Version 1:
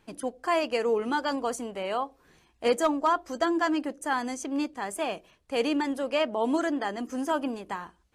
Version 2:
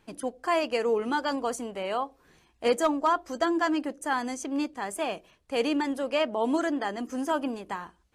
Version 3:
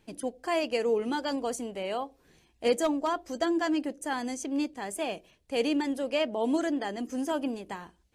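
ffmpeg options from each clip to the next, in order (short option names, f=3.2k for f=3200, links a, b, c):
-af anull
-af "equalizer=f=1.2k:w=1.4:g=-8.5"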